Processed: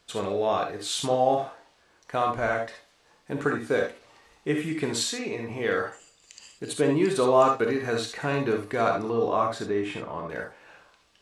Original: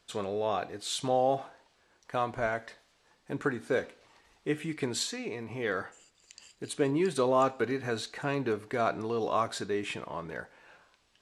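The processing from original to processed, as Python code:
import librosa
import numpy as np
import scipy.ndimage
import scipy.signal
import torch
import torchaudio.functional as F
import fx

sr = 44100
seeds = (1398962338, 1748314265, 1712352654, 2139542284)

y = fx.high_shelf(x, sr, hz=2800.0, db=-10.0, at=(9.05, 10.3))
y = fx.rev_gated(y, sr, seeds[0], gate_ms=90, shape='rising', drr_db=3.0)
y = y * 10.0 ** (3.5 / 20.0)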